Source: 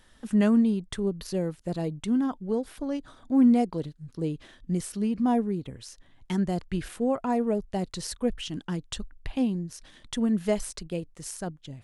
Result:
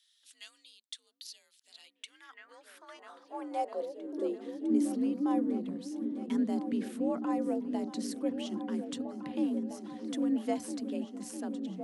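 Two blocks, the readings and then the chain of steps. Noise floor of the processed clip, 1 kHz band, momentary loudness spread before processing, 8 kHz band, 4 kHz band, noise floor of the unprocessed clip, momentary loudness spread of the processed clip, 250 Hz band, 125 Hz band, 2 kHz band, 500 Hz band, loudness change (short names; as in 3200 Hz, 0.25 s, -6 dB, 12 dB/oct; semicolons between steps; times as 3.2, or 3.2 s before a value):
-71 dBFS, -5.0 dB, 15 LU, -8.0 dB, -7.0 dB, -58 dBFS, 21 LU, -6.5 dB, under -15 dB, -8.5 dB, -7.0 dB, -6.0 dB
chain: repeats that get brighter 0.654 s, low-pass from 200 Hz, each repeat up 2 oct, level -6 dB; high-pass sweep 3700 Hz -> 140 Hz, 1.61–5.22; frequency shift +53 Hz; gain -8.5 dB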